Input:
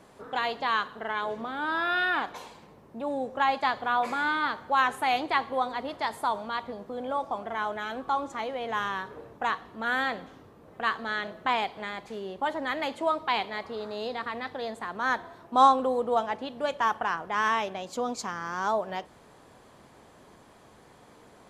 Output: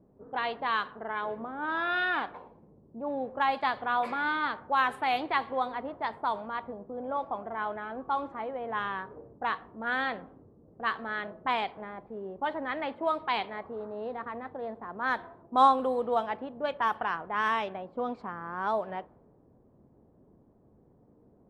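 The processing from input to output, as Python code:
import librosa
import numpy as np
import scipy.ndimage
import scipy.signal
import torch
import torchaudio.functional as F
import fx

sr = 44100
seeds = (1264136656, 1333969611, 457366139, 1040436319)

y = fx.env_lowpass(x, sr, base_hz=330.0, full_db=-21.0)
y = fx.peak_eq(y, sr, hz=6500.0, db=-14.0, octaves=0.51)
y = F.gain(torch.from_numpy(y), -2.0).numpy()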